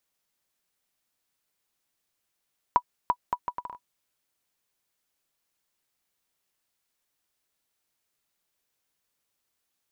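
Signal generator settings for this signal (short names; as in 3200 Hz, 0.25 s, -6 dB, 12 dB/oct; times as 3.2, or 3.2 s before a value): bouncing ball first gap 0.34 s, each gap 0.67, 980 Hz, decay 63 ms -8.5 dBFS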